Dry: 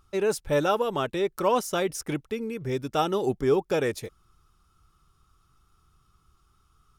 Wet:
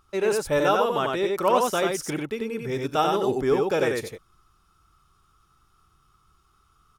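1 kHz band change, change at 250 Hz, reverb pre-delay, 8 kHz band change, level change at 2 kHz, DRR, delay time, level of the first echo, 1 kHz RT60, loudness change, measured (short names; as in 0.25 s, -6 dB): +4.5 dB, +1.5 dB, none, +2.0 dB, +4.5 dB, none, 42 ms, -17.0 dB, none, +3.0 dB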